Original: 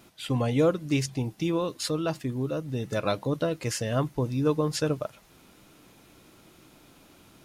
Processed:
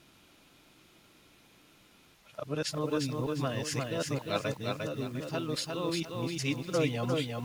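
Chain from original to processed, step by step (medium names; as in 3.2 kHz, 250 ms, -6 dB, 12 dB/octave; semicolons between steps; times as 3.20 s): reverse the whole clip; peaking EQ 3 kHz +6.5 dB 2.1 oct; bit-crushed delay 352 ms, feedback 35%, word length 8-bit, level -3 dB; trim -7.5 dB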